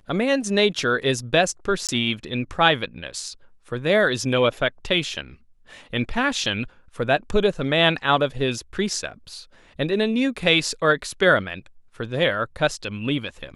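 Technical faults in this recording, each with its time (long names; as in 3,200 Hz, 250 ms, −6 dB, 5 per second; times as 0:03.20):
0:01.87–0:01.89: drop-out 17 ms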